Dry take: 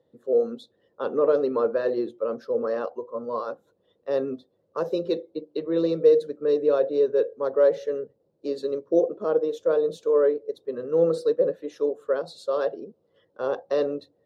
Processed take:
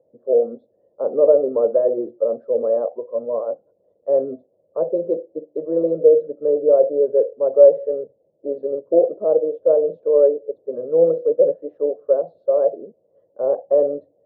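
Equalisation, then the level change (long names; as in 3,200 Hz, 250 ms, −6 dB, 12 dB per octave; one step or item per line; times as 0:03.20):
low-pass with resonance 620 Hz, resonance Q 4.9
high-frequency loss of the air 76 metres
−2.0 dB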